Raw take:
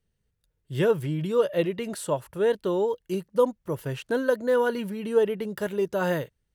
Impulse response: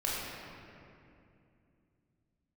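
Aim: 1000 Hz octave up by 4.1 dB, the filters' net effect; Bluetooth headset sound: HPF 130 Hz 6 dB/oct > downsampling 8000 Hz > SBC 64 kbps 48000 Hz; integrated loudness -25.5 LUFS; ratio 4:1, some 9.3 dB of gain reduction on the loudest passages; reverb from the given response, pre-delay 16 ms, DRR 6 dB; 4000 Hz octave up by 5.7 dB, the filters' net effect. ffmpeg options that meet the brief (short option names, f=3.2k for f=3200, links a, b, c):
-filter_complex "[0:a]equalizer=f=1k:t=o:g=4.5,equalizer=f=4k:t=o:g=7.5,acompressor=threshold=-26dB:ratio=4,asplit=2[a][b];[1:a]atrim=start_sample=2205,adelay=16[c];[b][c]afir=irnorm=-1:irlink=0,volume=-13dB[d];[a][d]amix=inputs=2:normalize=0,highpass=f=130:p=1,aresample=8000,aresample=44100,volume=5dB" -ar 48000 -c:a sbc -b:a 64k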